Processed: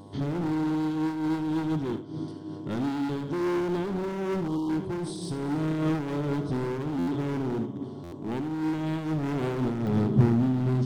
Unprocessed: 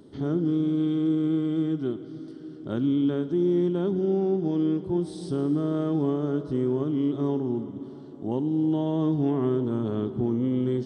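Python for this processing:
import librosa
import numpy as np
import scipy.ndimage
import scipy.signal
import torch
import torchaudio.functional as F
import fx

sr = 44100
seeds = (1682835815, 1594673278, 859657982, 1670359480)

y = fx.dmg_buzz(x, sr, base_hz=100.0, harmonics=11, level_db=-50.0, tilt_db=-3, odd_only=False)
y = np.clip(10.0 ** (29.0 / 20.0) * y, -1.0, 1.0) / 10.0 ** (29.0 / 20.0)
y = fx.high_shelf(y, sr, hz=2500.0, db=8.0)
y = fx.spec_erase(y, sr, start_s=4.48, length_s=0.22, low_hz=1300.0, high_hz=2800.0)
y = fx.peak_eq(y, sr, hz=140.0, db=fx.steps((0.0, 5.5), (9.87, 15.0)), octaves=1.5)
y = y + 10.0 ** (-10.0 / 20.0) * np.pad(y, (int(77 * sr / 1000.0), 0))[:len(y)]
y = fx.buffer_glitch(y, sr, at_s=(6.98, 8.03), block=512, repeats=7)
y = fx.am_noise(y, sr, seeds[0], hz=5.7, depth_pct=65)
y = y * 10.0 ** (3.0 / 20.0)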